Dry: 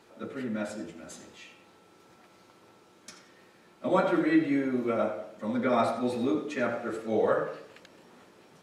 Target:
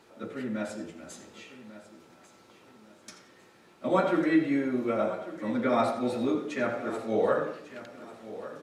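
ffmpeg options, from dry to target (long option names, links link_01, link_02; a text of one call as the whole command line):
ffmpeg -i in.wav -af "aecho=1:1:1147|2294|3441:0.178|0.0605|0.0206" out.wav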